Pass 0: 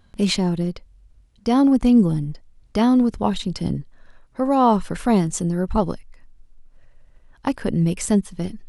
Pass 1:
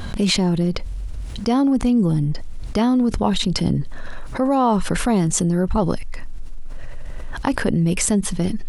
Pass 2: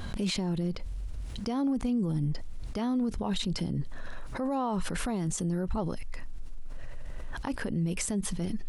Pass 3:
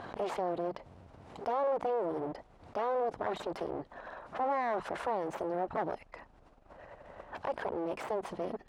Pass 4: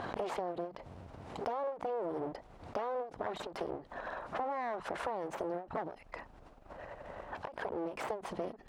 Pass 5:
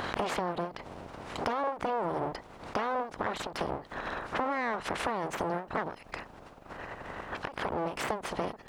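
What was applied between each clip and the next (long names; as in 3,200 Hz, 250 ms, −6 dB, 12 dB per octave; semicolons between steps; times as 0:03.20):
envelope flattener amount 70%; level −4 dB
brickwall limiter −14.5 dBFS, peak gain reduction 10.5 dB; level −8 dB
full-wave rectification; resonant band-pass 760 Hz, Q 1.5; level +7.5 dB
downward compressor, threshold −38 dBFS, peak gain reduction 10.5 dB; every ending faded ahead of time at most 170 dB per second; level +4.5 dB
ceiling on every frequency bin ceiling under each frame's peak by 14 dB; level +5.5 dB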